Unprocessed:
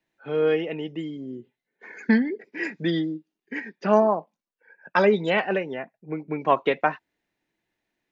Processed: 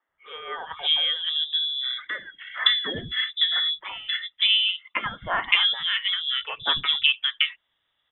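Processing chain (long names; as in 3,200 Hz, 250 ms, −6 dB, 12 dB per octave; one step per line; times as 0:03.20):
voice inversion scrambler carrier 3,700 Hz
treble cut that deepens with the level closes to 1,900 Hz, closed at −19.5 dBFS
three-band delay without the direct sound mids, lows, highs 90/570 ms, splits 240/1,800 Hz
level +7 dB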